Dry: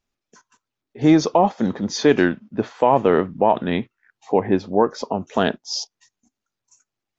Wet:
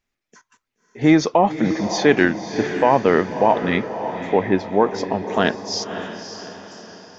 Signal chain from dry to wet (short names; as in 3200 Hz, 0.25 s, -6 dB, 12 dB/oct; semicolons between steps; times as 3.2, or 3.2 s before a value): bell 2000 Hz +8 dB 0.59 oct; on a send: diffused feedback echo 0.575 s, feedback 45%, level -9.5 dB